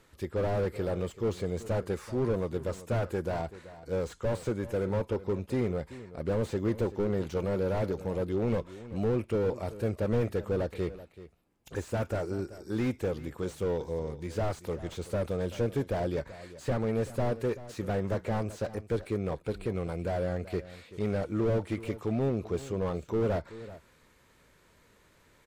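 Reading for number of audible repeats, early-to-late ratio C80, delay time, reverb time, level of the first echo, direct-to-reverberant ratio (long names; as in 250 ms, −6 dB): 1, no reverb audible, 383 ms, no reverb audible, −16.0 dB, no reverb audible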